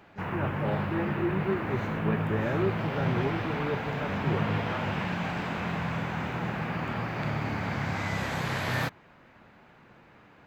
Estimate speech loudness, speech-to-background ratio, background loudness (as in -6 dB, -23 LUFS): -34.0 LUFS, -2.5 dB, -31.5 LUFS